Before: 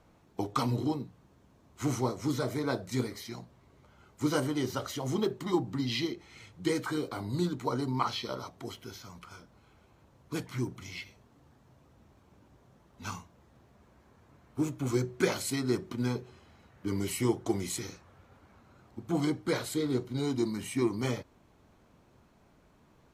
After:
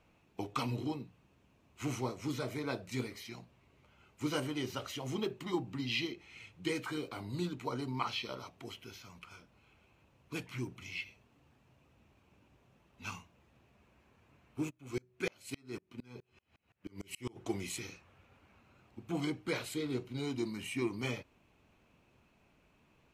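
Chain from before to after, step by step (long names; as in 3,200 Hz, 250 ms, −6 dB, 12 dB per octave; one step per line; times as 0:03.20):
parametric band 2,600 Hz +13 dB 0.48 octaves
0:14.69–0:17.35: tremolo with a ramp in dB swelling 2.8 Hz → 8.3 Hz, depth 33 dB
level −6.5 dB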